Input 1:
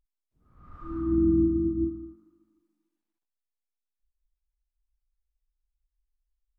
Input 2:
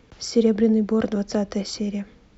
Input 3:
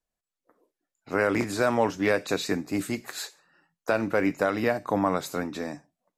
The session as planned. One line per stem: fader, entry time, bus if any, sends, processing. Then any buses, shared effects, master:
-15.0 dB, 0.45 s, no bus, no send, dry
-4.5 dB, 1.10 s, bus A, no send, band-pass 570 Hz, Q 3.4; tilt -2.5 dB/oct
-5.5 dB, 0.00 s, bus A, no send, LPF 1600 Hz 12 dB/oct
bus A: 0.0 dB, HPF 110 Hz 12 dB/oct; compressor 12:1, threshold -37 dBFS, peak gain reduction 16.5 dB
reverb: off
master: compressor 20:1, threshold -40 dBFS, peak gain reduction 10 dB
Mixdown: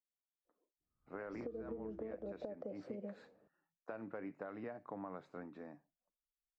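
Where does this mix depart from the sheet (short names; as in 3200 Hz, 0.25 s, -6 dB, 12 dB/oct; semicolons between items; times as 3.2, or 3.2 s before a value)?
stem 1 -15.0 dB -> -27.0 dB; stem 3 -5.5 dB -> -17.5 dB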